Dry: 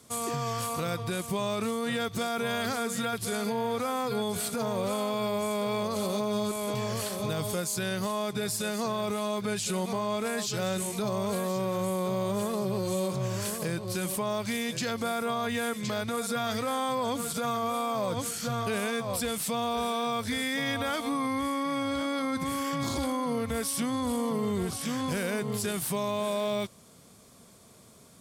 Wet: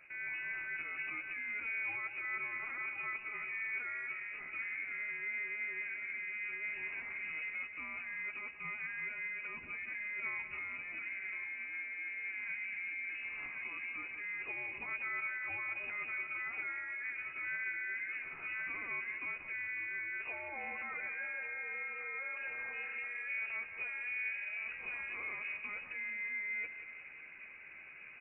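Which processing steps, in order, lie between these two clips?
high-pass 110 Hz; peaking EQ 580 Hz +7 dB 1.4 oct; reverse; compression 5:1, threshold -36 dBFS, peak gain reduction 13.5 dB; reverse; peak limiter -35 dBFS, peak gain reduction 9 dB; doubling 13 ms -6 dB; feedback delay 182 ms, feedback 60%, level -11.5 dB; frequency inversion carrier 2.7 kHz

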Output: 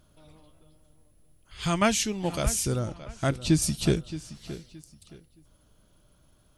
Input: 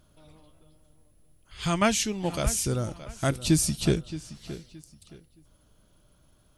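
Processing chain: 2.79–3.62 s: distance through air 57 m

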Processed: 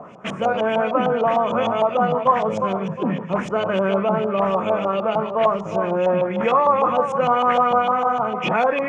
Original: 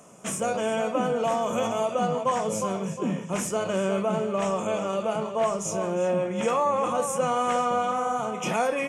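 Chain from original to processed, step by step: treble shelf 4.4 kHz -5.5 dB; reverse; upward compressor, threshold -31 dBFS; reverse; LFO low-pass saw up 6.6 Hz 770–3900 Hz; trim +4.5 dB

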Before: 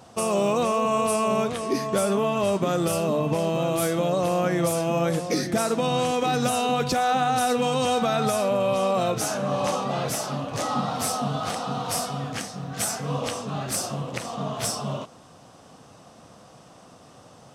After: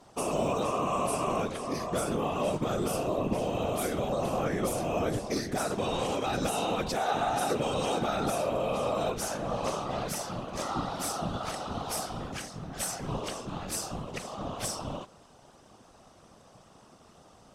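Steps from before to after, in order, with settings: whisper effect; trim -6.5 dB

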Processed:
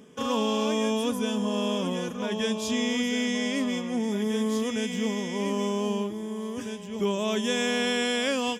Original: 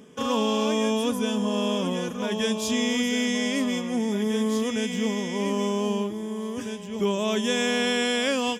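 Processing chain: 2.12–4.04 s: treble shelf 9.5 kHz -6.5 dB; trim -2 dB

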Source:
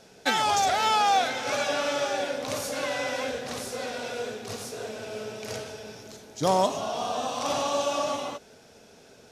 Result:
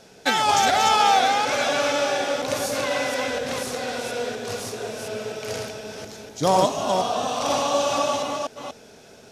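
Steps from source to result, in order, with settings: chunks repeated in reverse 242 ms, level -3.5 dB; trim +3.5 dB

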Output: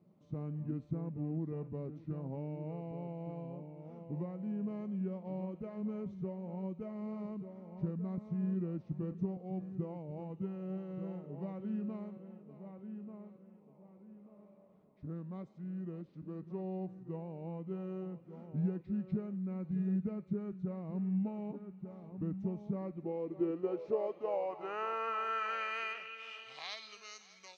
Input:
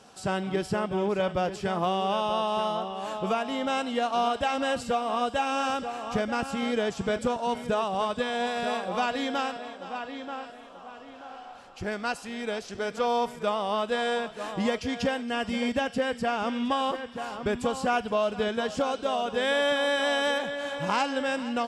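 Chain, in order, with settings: band-pass sweep 240 Hz -> 7.1 kHz, 17.81–21.37 s; wide varispeed 0.786×; trim -3.5 dB

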